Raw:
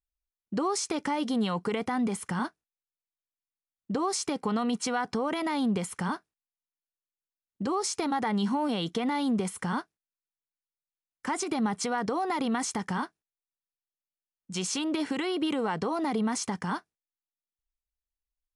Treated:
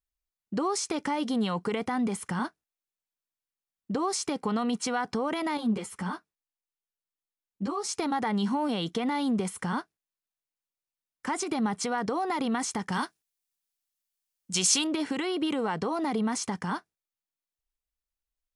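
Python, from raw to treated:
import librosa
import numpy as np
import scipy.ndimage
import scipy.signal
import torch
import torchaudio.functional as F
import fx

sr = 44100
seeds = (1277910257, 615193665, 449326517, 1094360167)

y = fx.ensemble(x, sr, at=(5.57, 7.89))
y = fx.high_shelf(y, sr, hz=2600.0, db=11.5, at=(12.92, 14.87))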